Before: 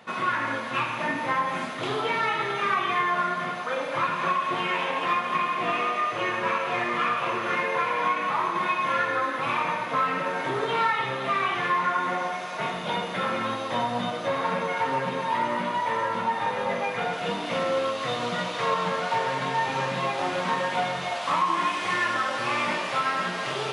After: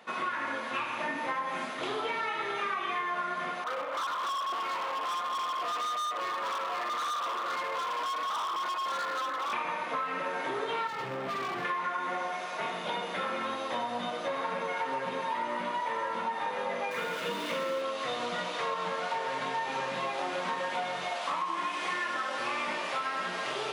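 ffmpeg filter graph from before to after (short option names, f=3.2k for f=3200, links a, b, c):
-filter_complex "[0:a]asettb=1/sr,asplit=3[a][b][c];[a]atrim=end=3.644[d];[b]atrim=start=3.64:end=9.53,asetpts=PTS-STARTPTS,afade=t=in:d=0.004:c=qsin,afade=t=out:st=5.886:d=0.004:c=qsin,highpass=f=240:w=0.5412,highpass=f=240:w=1.3066,equalizer=f=240:t=q:w=4:g=-7,equalizer=f=380:t=q:w=4:g=-9,equalizer=f=1.2k:t=q:w=4:g=8,equalizer=f=1.7k:t=q:w=4:g=-4,equalizer=f=2.5k:t=q:w=4:g=-7,lowpass=f=2.8k:w=0.5412,lowpass=f=2.8k:w=1.3066,volume=27dB,asoftclip=hard,volume=-27dB[e];[c]atrim=start=9.526[f];[d][e]acrossfade=d=0.004:c1=hsin:c2=qsin[g];[g][f]acrossfade=d=0.004:c1=qsin:c2=hsin,asettb=1/sr,asplit=3[h][i][j];[h]atrim=end=10.874[k];[i]atrim=start=10.87:end=11.65,asetpts=PTS-STARTPTS,afade=t=in:d=0.004:c=qsin,afade=t=out:st=0.776:d=0.004:c=qsin,lowpass=f=2.8k:p=1,aemphasis=mode=reproduction:type=riaa,asoftclip=type=hard:threshold=-27.5dB[l];[j]atrim=start=11.646[m];[k][l]acrossfade=d=0.004:c1=hsin:c2=qsin[n];[n][m]acrossfade=d=0.004:c1=qsin:c2=hsin,asettb=1/sr,asplit=3[o][p][q];[o]atrim=end=16.914[r];[p]atrim=start=16.91:end=17.82,asetpts=PTS-STARTPTS,afade=t=in:d=0.004:c=qsin,afade=t=out:st=0.906:d=0.004:c=qsin,aeval=exprs='val(0)+0.5*0.0158*sgn(val(0))':c=same,asuperstop=centerf=750:order=4:qfactor=3.8[s];[q]atrim=start=17.816[t];[r][s]acrossfade=d=0.004:c1=hsin:c2=qsin[u];[u][t]acrossfade=d=0.004:c1=qsin:c2=hsin,highpass=240,acompressor=threshold=-26dB:ratio=6,volume=-3dB"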